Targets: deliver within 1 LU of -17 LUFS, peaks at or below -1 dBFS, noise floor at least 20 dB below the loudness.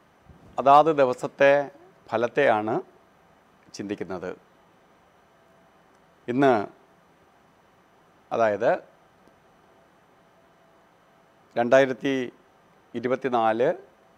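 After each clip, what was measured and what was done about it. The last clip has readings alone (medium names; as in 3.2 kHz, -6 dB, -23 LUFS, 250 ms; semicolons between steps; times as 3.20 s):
loudness -23.5 LUFS; peak level -5.0 dBFS; loudness target -17.0 LUFS
-> trim +6.5 dB; peak limiter -1 dBFS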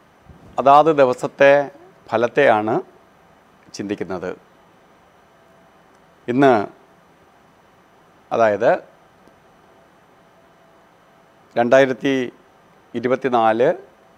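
loudness -17.5 LUFS; peak level -1.0 dBFS; noise floor -53 dBFS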